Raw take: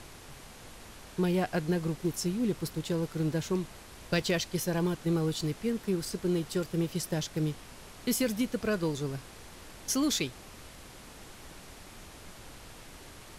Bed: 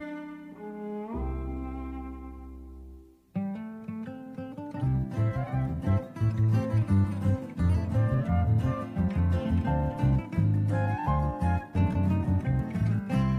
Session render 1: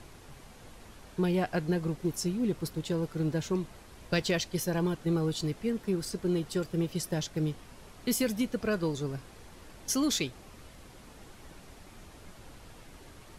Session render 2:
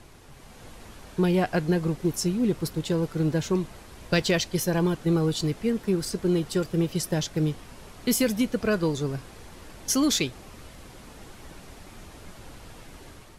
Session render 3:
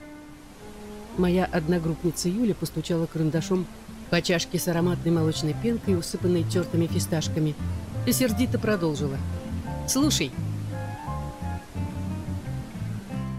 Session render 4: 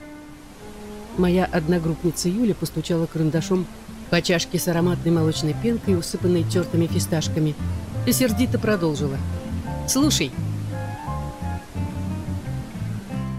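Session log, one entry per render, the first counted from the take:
noise reduction 6 dB, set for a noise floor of -50 dBFS
level rider gain up to 5.5 dB
add bed -5.5 dB
trim +3.5 dB

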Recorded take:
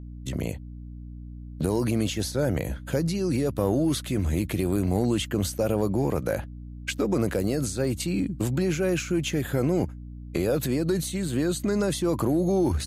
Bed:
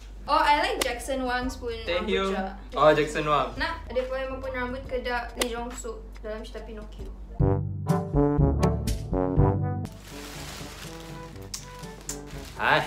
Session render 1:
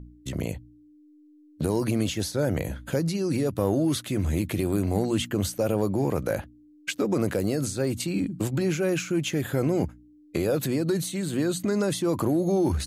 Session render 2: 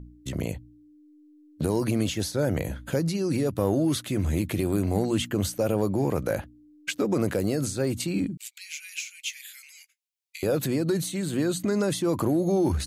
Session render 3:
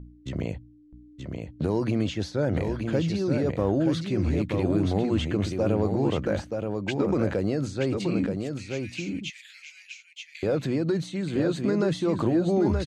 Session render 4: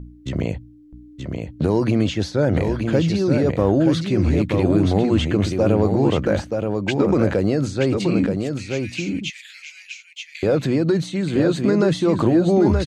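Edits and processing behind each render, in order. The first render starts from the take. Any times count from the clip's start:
de-hum 60 Hz, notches 4
8.37–10.43 s: Chebyshev high-pass 2.2 kHz, order 4
distance through air 140 m; delay 927 ms -5 dB
trim +7 dB

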